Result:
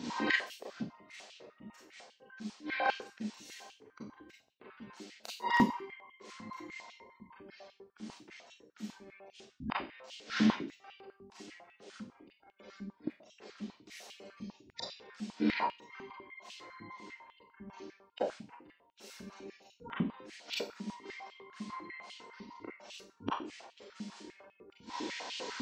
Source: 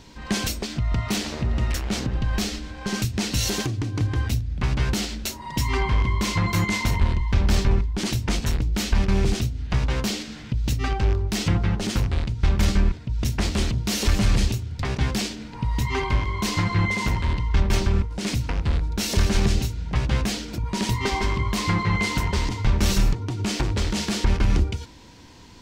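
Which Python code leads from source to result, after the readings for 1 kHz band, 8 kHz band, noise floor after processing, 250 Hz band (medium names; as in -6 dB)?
-9.0 dB, -23.5 dB, -70 dBFS, -12.0 dB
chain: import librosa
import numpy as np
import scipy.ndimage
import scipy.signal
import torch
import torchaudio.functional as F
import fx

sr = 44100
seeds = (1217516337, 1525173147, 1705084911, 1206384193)

y = fx.spec_gate(x, sr, threshold_db=-30, keep='strong')
y = fx.gate_flip(y, sr, shuts_db=-21.0, range_db=-32)
y = fx.rev_schroeder(y, sr, rt60_s=0.38, comb_ms=29, drr_db=-5.5)
y = fx.filter_held_highpass(y, sr, hz=10.0, low_hz=220.0, high_hz=2900.0)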